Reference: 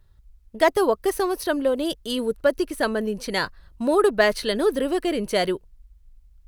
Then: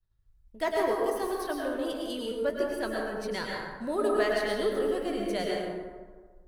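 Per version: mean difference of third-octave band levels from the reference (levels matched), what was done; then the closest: 8.0 dB: expander -48 dBFS; flange 0.62 Hz, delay 5.7 ms, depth 9.2 ms, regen -56%; plate-style reverb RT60 1.5 s, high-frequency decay 0.45×, pre-delay 90 ms, DRR -2 dB; trim -7.5 dB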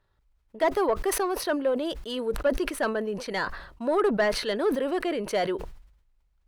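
5.0 dB: bass shelf 140 Hz -5.5 dB; overdrive pedal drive 15 dB, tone 1.3 kHz, clips at -5.5 dBFS; decay stretcher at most 77 dB/s; trim -7 dB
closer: second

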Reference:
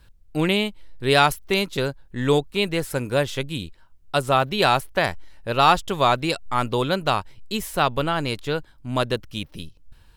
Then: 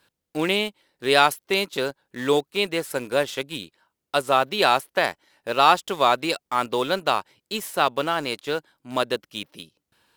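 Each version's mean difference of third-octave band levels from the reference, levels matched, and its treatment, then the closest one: 3.0 dB: high-pass 280 Hz 12 dB/octave; in parallel at -11.5 dB: bit crusher 5-bit; on the sum: trim -2 dB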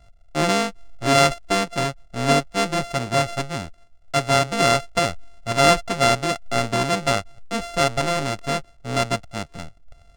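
8.0 dB: sorted samples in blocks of 64 samples; Savitzky-Golay filter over 9 samples; trim +1 dB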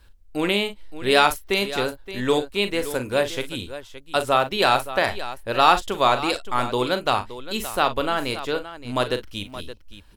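4.0 dB: peaking EQ 150 Hz -13.5 dB 0.54 oct; on a send: multi-tap echo 40/54/571 ms -10.5/-19.5/-13.5 dB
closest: first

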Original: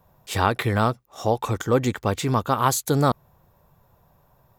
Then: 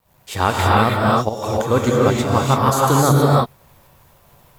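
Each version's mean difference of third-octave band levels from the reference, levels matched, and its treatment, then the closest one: 8.0 dB: in parallel at +1 dB: level held to a coarse grid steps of 21 dB; on the sum: bit crusher 9-bit; volume shaper 93 bpm, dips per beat 1, -14 dB, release 228 ms; gated-style reverb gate 350 ms rising, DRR -4 dB; trim -2.5 dB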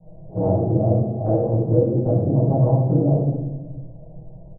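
18.5 dB: steep low-pass 690 Hz 48 dB/octave; comb 6.2 ms, depth 50%; compression 5:1, threshold -32 dBFS, peak gain reduction 17 dB; simulated room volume 610 m³, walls mixed, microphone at 7.5 m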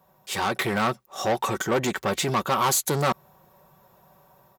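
5.5 dB: comb 5.3 ms, depth 49%; saturation -22 dBFS, distortion -7 dB; level rider gain up to 5 dB; high-pass 270 Hz 6 dB/octave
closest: third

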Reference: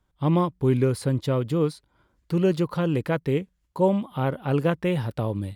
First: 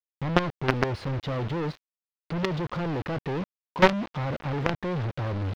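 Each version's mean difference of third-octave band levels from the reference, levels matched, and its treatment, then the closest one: 7.5 dB: companded quantiser 2-bit; distance through air 250 m; trim -2.5 dB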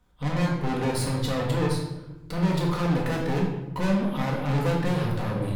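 10.5 dB: valve stage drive 34 dB, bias 0.5; simulated room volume 430 m³, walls mixed, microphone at 1.9 m; trim +5.5 dB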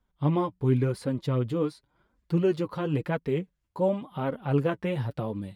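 2.5 dB: treble shelf 5.1 kHz -7 dB; flange 0.93 Hz, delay 3.7 ms, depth 6.6 ms, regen +22%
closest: third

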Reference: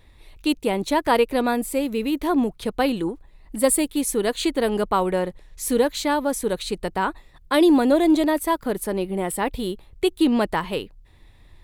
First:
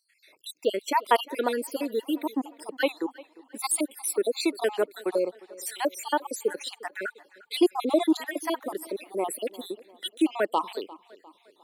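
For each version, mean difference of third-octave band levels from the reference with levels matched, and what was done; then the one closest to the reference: 8.0 dB: random holes in the spectrogram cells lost 64%; high-pass 320 Hz 24 dB/octave; tape echo 352 ms, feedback 48%, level -20 dB, low-pass 4.9 kHz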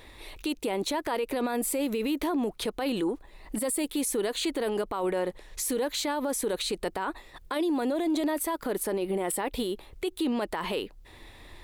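4.0 dB: FFT filter 150 Hz 0 dB, 220 Hz +5 dB, 350 Hz +10 dB; in parallel at 0 dB: compression, threshold -30 dBFS, peak gain reduction 24 dB; on the sum: peak limiter -14.5 dBFS, peak gain reduction 18.5 dB; trim -7 dB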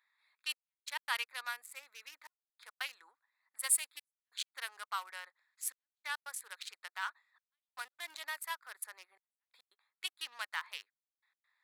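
15.0 dB: local Wiener filter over 15 samples; high-pass 1.4 kHz 24 dB/octave; trance gate "xxxxx...x.xxxxxx" 139 bpm -60 dB; trim -6 dB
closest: second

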